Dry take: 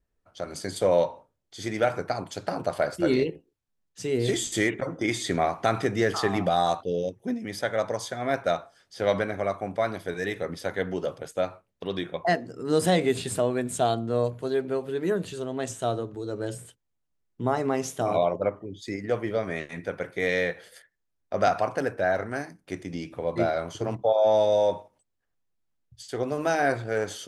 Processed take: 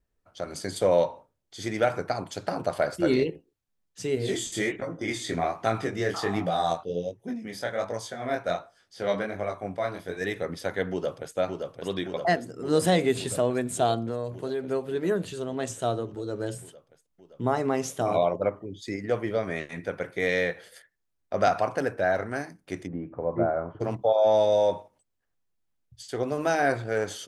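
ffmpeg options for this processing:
-filter_complex "[0:a]asettb=1/sr,asplit=3[s0][s1][s2];[s0]atrim=end=4.154[s3];[s1]atrim=start=4.15:end=10.21,asetpts=PTS-STARTPTS,afade=t=in:d=0.004:c=qsin,afade=t=out:st=6.056:d=0.004:c=qsin,flanger=delay=18:depth=7.1:speed=1.3[s4];[s2]atrim=start=10.206[s5];[s3][s4]acrossfade=d=0.004:c1=hsin:c2=qsin[s6];[s6][s5]acrossfade=d=0.004:c1=qsin:c2=hsin,asplit=2[s7][s8];[s8]afade=t=in:st=10.91:d=0.01,afade=t=out:st=11.36:d=0.01,aecho=0:1:570|1140|1710|2280|2850|3420|3990|4560|5130|5700|6270|6840:0.595662|0.47653|0.381224|0.304979|0.243983|0.195187|0.156149|0.124919|0.0999355|0.0799484|0.0639587|0.051167[s9];[s7][s9]amix=inputs=2:normalize=0,asettb=1/sr,asplit=3[s10][s11][s12];[s10]atrim=end=14.074[s13];[s11]atrim=start=14.07:end=14.65,asetpts=PTS-STARTPTS,afade=t=in:d=0.004:c=qsin,afade=t=out:st=0.576:d=0.004:c=qsin,acompressor=threshold=0.0501:ratio=5:attack=3.2:release=140:knee=1:detection=peak[s14];[s12]atrim=start=14.646[s15];[s13][s14]acrossfade=d=0.004:c1=hsin:c2=qsin[s16];[s16][s15]acrossfade=d=0.004:c1=qsin:c2=hsin,asplit=3[s17][s18][s19];[s17]afade=t=out:st=22.86:d=0.02[s20];[s18]lowpass=f=1400:w=0.5412,lowpass=f=1400:w=1.3066,afade=t=in:st=22.86:d=0.02,afade=t=out:st=23.8:d=0.02[s21];[s19]afade=t=in:st=23.8:d=0.02[s22];[s20][s21][s22]amix=inputs=3:normalize=0"

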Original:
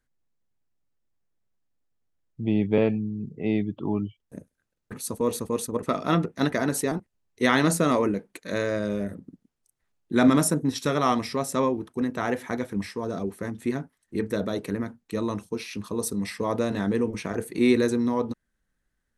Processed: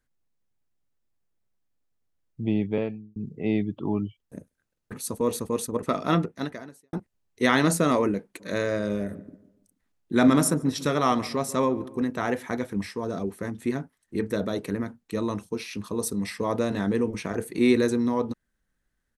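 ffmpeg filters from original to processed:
-filter_complex "[0:a]asplit=3[s0][s1][s2];[s0]afade=t=out:st=8.39:d=0.02[s3];[s1]asplit=2[s4][s5];[s5]adelay=144,lowpass=f=1700:p=1,volume=0.15,asplit=2[s6][s7];[s7]adelay=144,lowpass=f=1700:p=1,volume=0.41,asplit=2[s8][s9];[s9]adelay=144,lowpass=f=1700:p=1,volume=0.41,asplit=2[s10][s11];[s11]adelay=144,lowpass=f=1700:p=1,volume=0.41[s12];[s4][s6][s8][s10][s12]amix=inputs=5:normalize=0,afade=t=in:st=8.39:d=0.02,afade=t=out:st=11.99:d=0.02[s13];[s2]afade=t=in:st=11.99:d=0.02[s14];[s3][s13][s14]amix=inputs=3:normalize=0,asplit=3[s15][s16][s17];[s15]atrim=end=3.16,asetpts=PTS-STARTPTS,afade=t=out:st=2.44:d=0.72[s18];[s16]atrim=start=3.16:end=6.93,asetpts=PTS-STARTPTS,afade=t=in:d=0.004:c=hsin,afade=t=out:st=3.03:d=0.74:c=qua[s19];[s17]atrim=start=6.93,asetpts=PTS-STARTPTS,afade=t=in:d=0.004:c=hsin[s20];[s18][s19][s20]concat=n=3:v=0:a=1"

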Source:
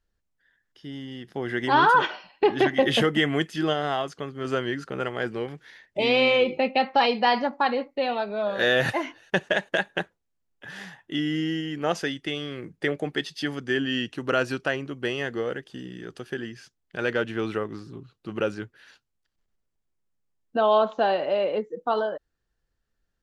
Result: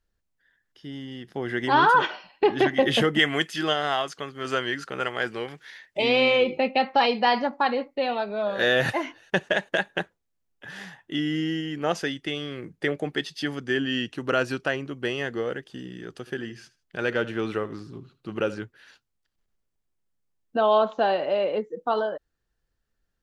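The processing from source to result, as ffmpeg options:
-filter_complex "[0:a]asettb=1/sr,asplit=3[s0][s1][s2];[s0]atrim=end=3.194[s3];[s1]atrim=start=3.19:end=6.02,asetpts=PTS-STARTPTS,afade=t=in:d=0.004:c=qsin,afade=t=out:st=2.826:d=0.004:c=qsin,tiltshelf=f=640:g=-5.5[s4];[s2]atrim=start=6.016[s5];[s3][s4]acrossfade=d=0.004:c1=hsin:c2=qsin[s6];[s6][s5]acrossfade=d=0.004:c1=qsin:c2=hsin,asettb=1/sr,asplit=3[s7][s8][s9];[s7]atrim=end=16.184[s10];[s8]atrim=start=16.18:end=18.59,asetpts=PTS-STARTPTS,afade=t=in:d=0.004:c=qsin,afade=t=out:st=2.406:d=0.004:c=qsin,aecho=1:1:77|154:0.141|0.0367,atrim=end_sample=106281[s11];[s9]atrim=start=18.586[s12];[s10][s11]acrossfade=d=0.004:c1=hsin:c2=qsin[s13];[s13][s12]acrossfade=d=0.004:c1=qsin:c2=hsin"

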